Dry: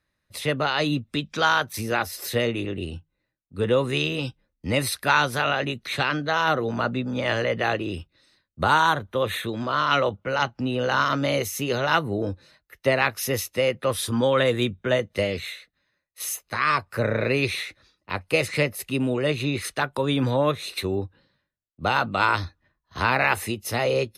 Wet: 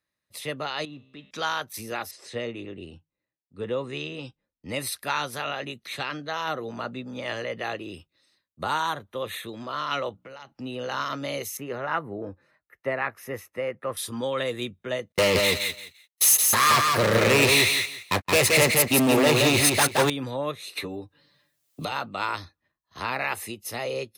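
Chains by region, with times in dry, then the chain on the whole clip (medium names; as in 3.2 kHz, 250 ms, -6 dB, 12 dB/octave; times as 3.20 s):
0.85–1.31 s: companding laws mixed up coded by mu + low-pass 2.7 kHz + feedback comb 66 Hz, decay 1.6 s, mix 70%
2.11–4.69 s: steep low-pass 8.8 kHz + treble shelf 3.3 kHz -8 dB
10.12–10.52 s: hum notches 60/120/180/240/300 Hz + compression 10:1, threshold -31 dBFS
11.57–13.97 s: de-esser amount 30% + resonant high shelf 2.6 kHz -13.5 dB, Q 1.5
15.12–20.10 s: waveshaping leveller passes 5 + gate -19 dBFS, range -43 dB + feedback delay 172 ms, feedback 21%, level -3.5 dB
20.75–21.92 s: comb 6.8 ms, depth 78% + three bands compressed up and down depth 100%
whole clip: high-pass 170 Hz 6 dB/octave; treble shelf 5.9 kHz +6 dB; band-stop 1.5 kHz, Q 15; trim -7 dB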